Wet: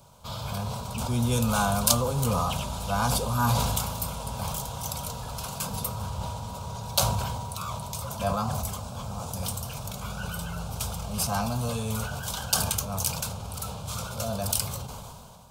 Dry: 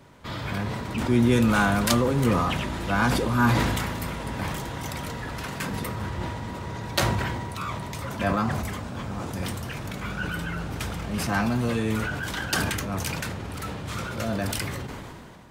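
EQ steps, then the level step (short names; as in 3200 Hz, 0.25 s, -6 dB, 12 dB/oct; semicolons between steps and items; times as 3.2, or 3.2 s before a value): high shelf 4900 Hz +9.5 dB; fixed phaser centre 780 Hz, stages 4; 0.0 dB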